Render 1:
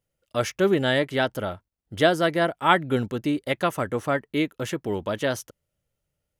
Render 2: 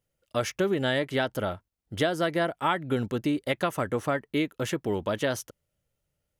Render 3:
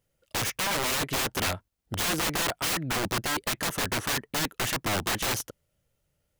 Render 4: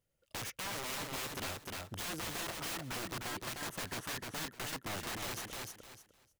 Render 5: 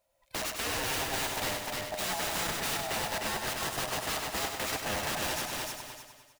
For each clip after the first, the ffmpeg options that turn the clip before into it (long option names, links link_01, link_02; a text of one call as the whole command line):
ffmpeg -i in.wav -af "acompressor=threshold=-22dB:ratio=6" out.wav
ffmpeg -i in.wav -af "aeval=exprs='(mod(22.4*val(0)+1,2)-1)/22.4':channel_layout=same,volume=4.5dB" out.wav
ffmpeg -i in.wav -af "aecho=1:1:304|608|912:0.631|0.114|0.0204,acompressor=threshold=-42dB:ratio=1.5,volume=-7dB" out.wav
ffmpeg -i in.wav -af "afftfilt=real='real(if(lt(b,1008),b+24*(1-2*mod(floor(b/24),2)),b),0)':imag='imag(if(lt(b,1008),b+24*(1-2*mod(floor(b/24),2)),b),0)':win_size=2048:overlap=0.75,aecho=1:1:99|198|297|396|495|594|693:0.501|0.281|0.157|0.088|0.0493|0.0276|0.0155,volume=6.5dB" out.wav